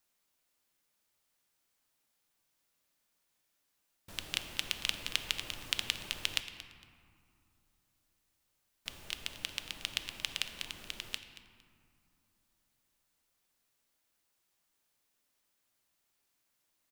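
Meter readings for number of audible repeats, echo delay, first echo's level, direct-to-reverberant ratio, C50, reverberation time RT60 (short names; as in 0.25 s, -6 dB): 2, 0.229 s, -16.0 dB, 7.5 dB, 9.0 dB, 2.6 s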